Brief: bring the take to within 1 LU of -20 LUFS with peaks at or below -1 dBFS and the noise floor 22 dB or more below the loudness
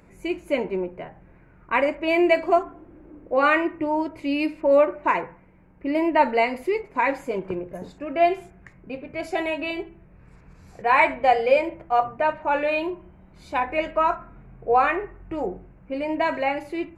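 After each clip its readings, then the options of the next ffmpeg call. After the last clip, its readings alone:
loudness -23.5 LUFS; peak level -5.5 dBFS; loudness target -20.0 LUFS
-> -af "volume=1.5"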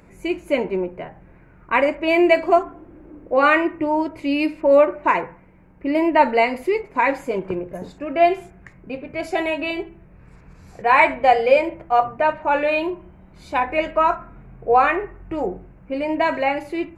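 loudness -20.0 LUFS; peak level -1.5 dBFS; noise floor -49 dBFS

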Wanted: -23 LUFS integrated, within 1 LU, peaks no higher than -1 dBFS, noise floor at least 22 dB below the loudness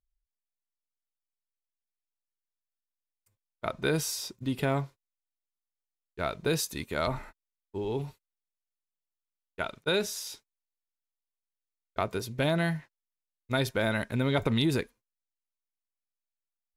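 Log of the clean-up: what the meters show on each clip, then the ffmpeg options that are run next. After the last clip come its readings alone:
loudness -31.0 LUFS; peak level -12.5 dBFS; loudness target -23.0 LUFS
-> -af "volume=2.51"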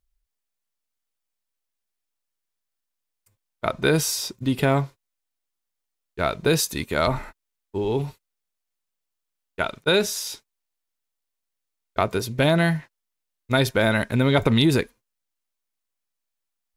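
loudness -23.0 LUFS; peak level -4.5 dBFS; noise floor -82 dBFS

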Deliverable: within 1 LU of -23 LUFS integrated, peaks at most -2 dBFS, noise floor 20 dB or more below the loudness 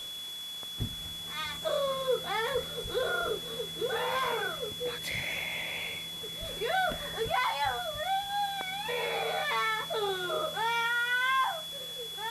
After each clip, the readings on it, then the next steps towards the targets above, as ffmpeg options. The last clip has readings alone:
steady tone 3.4 kHz; tone level -38 dBFS; noise floor -40 dBFS; noise floor target -52 dBFS; loudness -31.5 LUFS; peak level -17.5 dBFS; loudness target -23.0 LUFS
-> -af "bandreject=f=3400:w=30"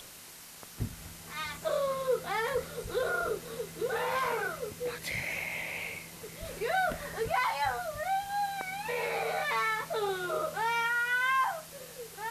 steady tone not found; noise floor -49 dBFS; noise floor target -53 dBFS
-> -af "afftdn=nr=6:nf=-49"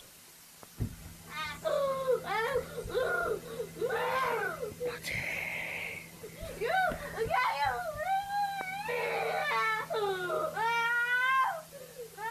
noise floor -54 dBFS; loudness -32.5 LUFS; peak level -18.0 dBFS; loudness target -23.0 LUFS
-> -af "volume=2.99"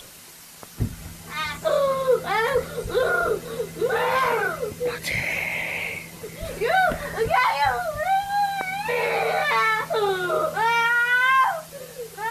loudness -23.0 LUFS; peak level -8.5 dBFS; noise floor -44 dBFS

